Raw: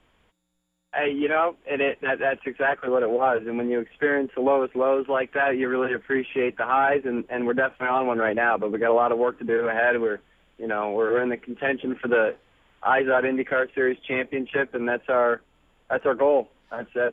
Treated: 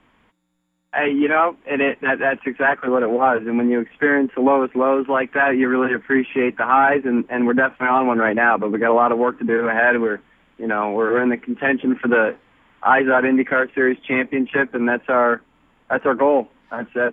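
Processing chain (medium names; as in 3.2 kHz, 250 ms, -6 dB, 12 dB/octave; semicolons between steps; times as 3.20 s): graphic EQ 125/250/1000/2000 Hz +4/+11/+8/+7 dB; trim -1.5 dB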